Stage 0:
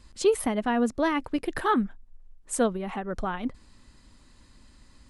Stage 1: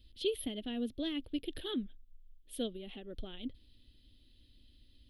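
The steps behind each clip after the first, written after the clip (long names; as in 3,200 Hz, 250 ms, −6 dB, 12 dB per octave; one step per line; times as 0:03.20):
drawn EQ curve 110 Hz 0 dB, 160 Hz −12 dB, 280 Hz −1 dB, 590 Hz −9 dB, 1,000 Hz −27 dB, 2,300 Hz −8 dB, 3,300 Hz +11 dB, 7,400 Hz −25 dB, 13,000 Hz +10 dB
level −7 dB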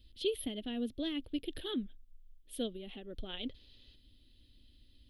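gain on a spectral selection 0:03.29–0:03.95, 370–7,000 Hz +8 dB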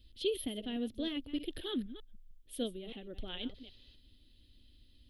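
delay that plays each chunk backwards 154 ms, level −12.5 dB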